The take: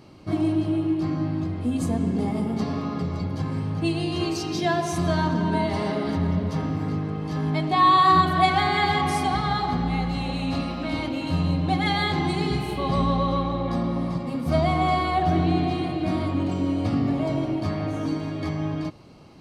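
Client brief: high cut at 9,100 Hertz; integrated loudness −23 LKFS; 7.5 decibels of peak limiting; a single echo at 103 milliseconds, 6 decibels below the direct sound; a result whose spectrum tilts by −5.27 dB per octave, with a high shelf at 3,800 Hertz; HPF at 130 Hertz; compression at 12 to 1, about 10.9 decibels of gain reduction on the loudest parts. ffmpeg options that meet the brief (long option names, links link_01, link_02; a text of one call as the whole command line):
ffmpeg -i in.wav -af "highpass=130,lowpass=9100,highshelf=frequency=3800:gain=4.5,acompressor=threshold=-24dB:ratio=12,alimiter=limit=-23.5dB:level=0:latency=1,aecho=1:1:103:0.501,volume=7.5dB" out.wav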